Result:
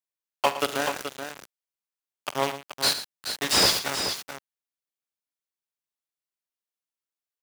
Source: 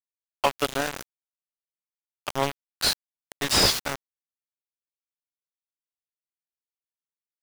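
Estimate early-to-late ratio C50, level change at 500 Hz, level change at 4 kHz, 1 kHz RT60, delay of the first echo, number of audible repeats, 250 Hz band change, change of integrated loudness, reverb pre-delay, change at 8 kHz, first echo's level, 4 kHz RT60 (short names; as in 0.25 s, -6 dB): none, +0.5 dB, +1.0 dB, none, 46 ms, 3, -1.0 dB, 0.0 dB, none, +1.0 dB, -16.0 dB, none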